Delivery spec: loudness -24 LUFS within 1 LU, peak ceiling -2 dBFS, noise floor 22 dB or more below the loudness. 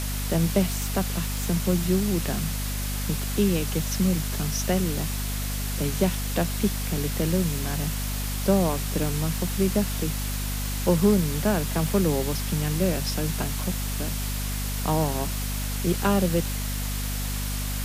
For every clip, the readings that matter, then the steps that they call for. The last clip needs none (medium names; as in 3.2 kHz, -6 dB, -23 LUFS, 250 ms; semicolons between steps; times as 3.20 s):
hum 50 Hz; highest harmonic 250 Hz; hum level -27 dBFS; noise floor -29 dBFS; noise floor target -48 dBFS; loudness -26.0 LUFS; peak level -8.5 dBFS; loudness target -24.0 LUFS
-> de-hum 50 Hz, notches 5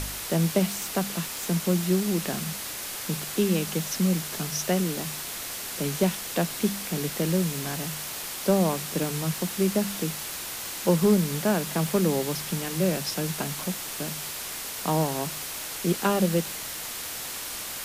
hum not found; noise floor -35 dBFS; noise floor target -49 dBFS
-> noise print and reduce 14 dB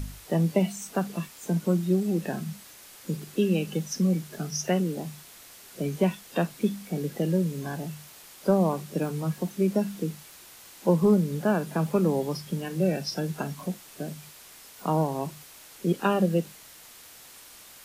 noise floor -49 dBFS; noise floor target -50 dBFS
-> noise print and reduce 6 dB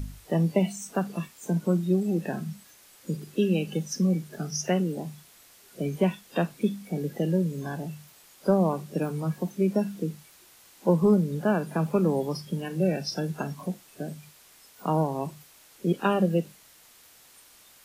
noise floor -55 dBFS; loudness -28.0 LUFS; peak level -10.0 dBFS; loudness target -24.0 LUFS
-> trim +4 dB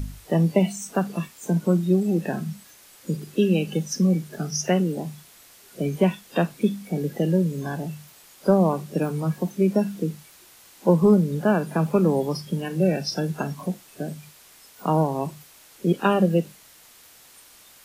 loudness -24.0 LUFS; peak level -6.0 dBFS; noise floor -51 dBFS